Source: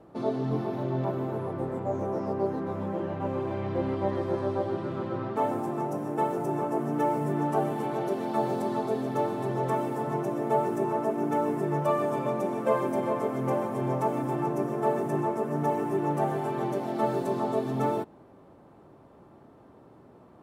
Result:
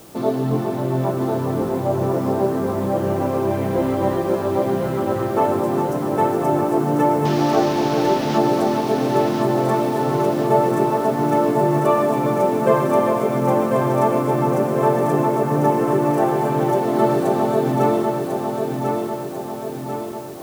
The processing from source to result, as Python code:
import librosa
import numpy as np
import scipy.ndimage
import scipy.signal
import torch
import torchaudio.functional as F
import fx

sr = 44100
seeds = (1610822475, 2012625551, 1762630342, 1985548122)

p1 = fx.delta_mod(x, sr, bps=32000, step_db=-31.0, at=(7.25, 8.38))
p2 = fx.quant_dither(p1, sr, seeds[0], bits=8, dither='triangular')
p3 = p1 + F.gain(torch.from_numpy(p2), -4.0).numpy()
p4 = fx.echo_feedback(p3, sr, ms=1045, feedback_pct=54, wet_db=-4.5)
y = F.gain(torch.from_numpy(p4), 4.0).numpy()